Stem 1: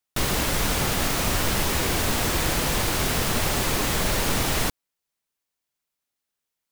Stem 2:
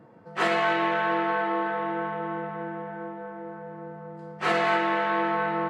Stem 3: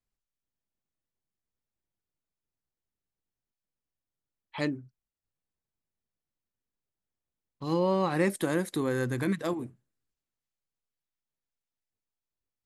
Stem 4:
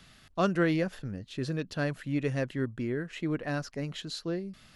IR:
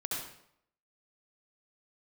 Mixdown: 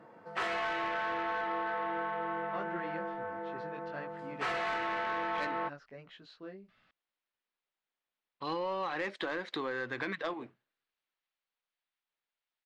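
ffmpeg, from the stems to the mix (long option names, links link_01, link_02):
-filter_complex "[1:a]volume=-8.5dB[link_01];[2:a]lowpass=frequency=4100:width=0.5412,lowpass=frequency=4100:width=1.3066,lowshelf=frequency=330:gain=-12,adelay=800,volume=-3dB[link_02];[3:a]flanger=delay=16.5:depth=5:speed=1.5,lowpass=2500,adelay=2150,volume=-15dB[link_03];[link_01][link_02][link_03]amix=inputs=3:normalize=0,asplit=2[link_04][link_05];[link_05]highpass=frequency=720:poles=1,volume=16dB,asoftclip=type=tanh:threshold=-16.5dB[link_06];[link_04][link_06]amix=inputs=2:normalize=0,lowpass=frequency=5200:poles=1,volume=-6dB,acompressor=threshold=-32dB:ratio=6"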